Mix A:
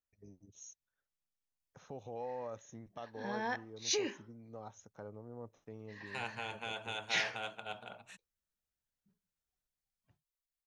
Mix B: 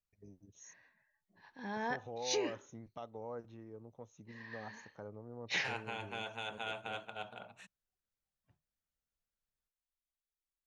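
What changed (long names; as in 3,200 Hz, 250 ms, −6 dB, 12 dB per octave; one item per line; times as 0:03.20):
second voice: entry −0.50 s
background: entry −1.60 s
master: add high-shelf EQ 4,200 Hz −5.5 dB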